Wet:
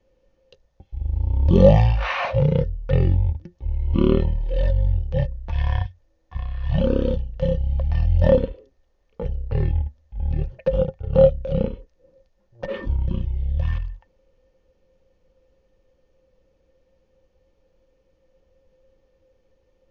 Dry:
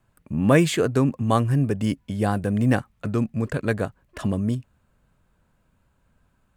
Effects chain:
change of speed 0.33×
hollow resonant body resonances 530/1,800 Hz, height 18 dB, ringing for 95 ms
level +1 dB

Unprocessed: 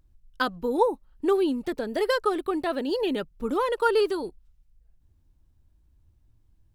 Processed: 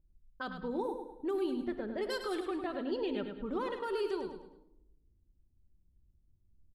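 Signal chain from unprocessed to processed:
low-pass that shuts in the quiet parts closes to 450 Hz, open at −18.5 dBFS
0:02.09–0:02.63: high-shelf EQ 3,100 Hz +11.5 dB
brickwall limiter −20.5 dBFS, peak gain reduction 11 dB
repeating echo 104 ms, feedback 38%, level −8 dB
rectangular room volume 3,200 cubic metres, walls furnished, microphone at 1.1 metres
level −8.5 dB

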